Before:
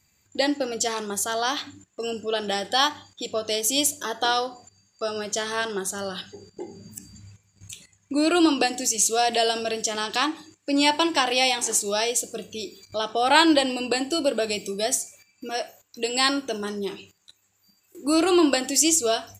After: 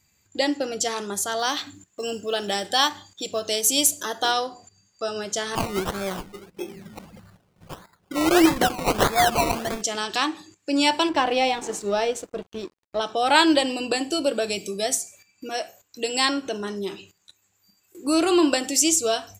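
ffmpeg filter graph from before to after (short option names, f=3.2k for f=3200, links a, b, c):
-filter_complex "[0:a]asettb=1/sr,asplit=3[a][b][c];[a]atrim=end=1.394[d];[b]atrim=start=1.39:end=4.32,asetpts=PTS-STARTPTS,afade=t=in:d=0.004:c=qsin,afade=t=out:st=2.926:d=0.004:c=qsin,highshelf=f=6.5k:g=6,acrusher=bits=8:mode=log:mix=0:aa=0.000001[e];[c]atrim=start=4.316[f];[d][e]acrossfade=d=0.004:c1=hsin:c2=qsin[g];[g][f]acrossfade=d=0.004:c1=qsin:c2=hsin,asettb=1/sr,asplit=3[h][i][j];[h]atrim=end=5.554[k];[i]atrim=start=5.55:end=9.82,asetpts=PTS-STARTPTS,afade=t=in:d=0.004:c=qsin,afade=t=out:st=4.266:d=0.004:c=qsin,aecho=1:1:5.5:0.64,atrim=end_sample=188307,acrusher=samples=21:mix=1:aa=0.000001:lfo=1:lforange=12.6:lforate=1.6[l];[j]atrim=start=9.816[m];[k][l]acrossfade=d=0.004:c1=hsin:c2=qsin[n];[n][m]acrossfade=d=0.004:c1=qsin:c2=hsin,asettb=1/sr,asplit=3[o][p][q];[o]atrim=end=11.094[r];[p]atrim=start=11.09:end=13.01,asetpts=PTS-STARTPTS,afade=t=in:d=0.004:c=qsin,afade=t=out:st=1.916:d=0.004:c=qsin,acontrast=39,aeval=exprs='sgn(val(0))*max(abs(val(0))-0.02,0)':c=same,lowpass=f=1.1k:p=1[s];[q]atrim=start=13.006[t];[r][s]acrossfade=d=0.004:c1=hsin:c2=qsin[u];[u][t]acrossfade=d=0.004:c1=qsin:c2=hsin,asettb=1/sr,asplit=3[v][w][x];[v]atrim=end=16.254[y];[w]atrim=start=16.25:end=16.76,asetpts=PTS-STARTPTS,afade=t=in:d=0.004:c=qsin,afade=t=out:st=0.506:d=0.004:c=qsin,highshelf=f=8.9k:g=-11,acompressor=mode=upward:threshold=-29dB:ratio=2.5:attack=3.2:release=140:knee=2.83:detection=peak[z];[x]atrim=start=16.756[aa];[y][z]acrossfade=d=0.004:c1=hsin:c2=qsin[ab];[ab][aa]acrossfade=d=0.004:c1=qsin:c2=hsin"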